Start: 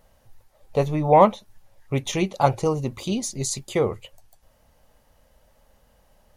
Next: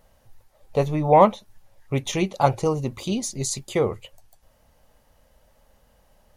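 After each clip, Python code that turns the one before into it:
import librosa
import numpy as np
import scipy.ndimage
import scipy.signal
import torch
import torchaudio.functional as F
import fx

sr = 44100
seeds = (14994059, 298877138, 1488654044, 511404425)

y = x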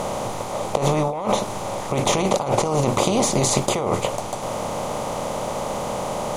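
y = fx.bin_compress(x, sr, power=0.4)
y = fx.over_compress(y, sr, threshold_db=-20.0, ratio=-1.0)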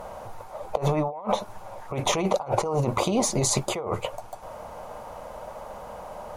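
y = fx.bin_expand(x, sr, power=2.0)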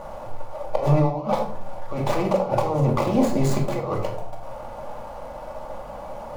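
y = scipy.ndimage.median_filter(x, 15, mode='constant')
y = fx.room_shoebox(y, sr, seeds[0], volume_m3=940.0, walls='furnished', distance_m=2.4)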